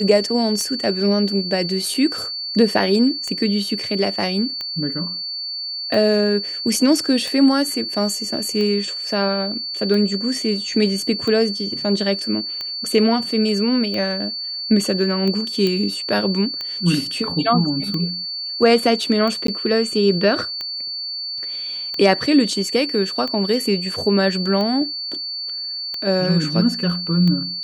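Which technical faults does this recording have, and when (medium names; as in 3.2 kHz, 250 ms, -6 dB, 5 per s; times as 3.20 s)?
tick 45 rpm -14 dBFS
whine 4.5 kHz -25 dBFS
1.94 s: dropout 4.3 ms
15.67 s: pop -9 dBFS
19.47–19.48 s: dropout 13 ms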